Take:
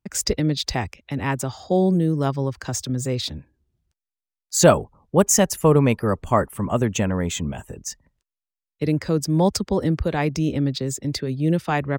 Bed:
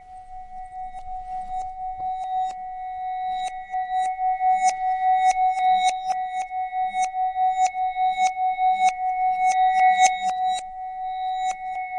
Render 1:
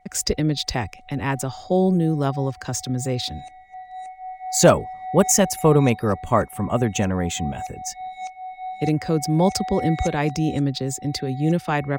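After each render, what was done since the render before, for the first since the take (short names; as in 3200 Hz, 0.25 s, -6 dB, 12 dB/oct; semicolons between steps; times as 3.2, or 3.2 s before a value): add bed -12 dB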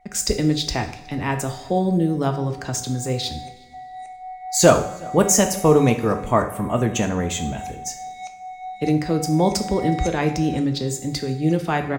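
outdoor echo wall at 63 m, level -24 dB; two-slope reverb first 0.56 s, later 2.2 s, from -19 dB, DRR 5.5 dB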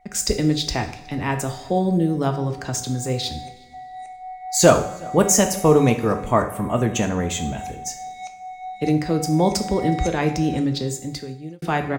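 10.8–11.62 fade out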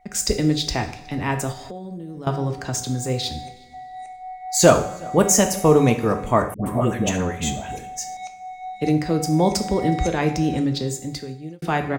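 1.52–2.27 compressor, threshold -32 dBFS; 6.54–8.17 dispersion highs, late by 0.119 s, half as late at 740 Hz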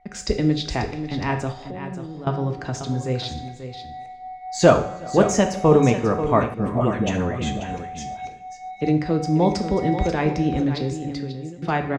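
air absorption 140 m; on a send: echo 0.538 s -10.5 dB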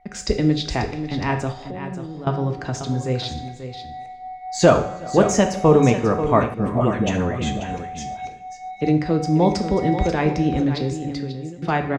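gain +1.5 dB; limiter -3 dBFS, peak gain reduction 2 dB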